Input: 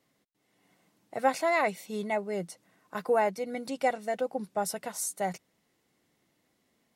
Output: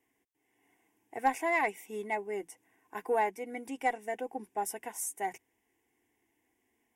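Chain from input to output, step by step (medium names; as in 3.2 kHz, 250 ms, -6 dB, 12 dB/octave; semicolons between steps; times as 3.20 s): static phaser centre 860 Hz, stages 8; Chebyshev shaper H 4 -25 dB, 6 -31 dB, 7 -38 dB, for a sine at -16 dBFS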